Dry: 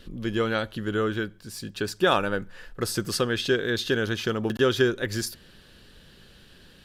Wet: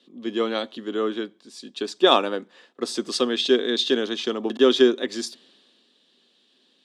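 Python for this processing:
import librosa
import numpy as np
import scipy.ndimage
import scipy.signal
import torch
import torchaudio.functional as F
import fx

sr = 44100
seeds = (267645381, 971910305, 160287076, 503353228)

y = fx.cabinet(x, sr, low_hz=250.0, low_slope=24, high_hz=8600.0, hz=(250.0, 380.0, 710.0, 1100.0, 1500.0, 3600.0), db=(9, 3, 4, 4, -8, 8))
y = fx.band_widen(y, sr, depth_pct=40)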